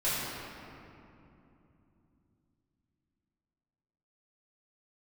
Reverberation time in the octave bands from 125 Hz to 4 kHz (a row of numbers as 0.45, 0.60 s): 4.7, 4.4, 3.1, 2.7, 2.2, 1.5 s